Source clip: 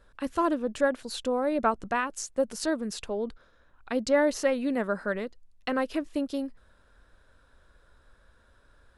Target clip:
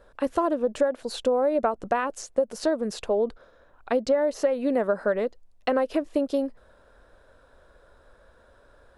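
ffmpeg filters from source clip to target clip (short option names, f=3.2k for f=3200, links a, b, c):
-filter_complex "[0:a]equalizer=f=580:t=o:w=1.6:g=11,acrossover=split=5300[a][b];[b]alimiter=level_in=8.5dB:limit=-24dB:level=0:latency=1:release=172,volume=-8.5dB[c];[a][c]amix=inputs=2:normalize=0,acompressor=threshold=-20dB:ratio=16,volume=1dB"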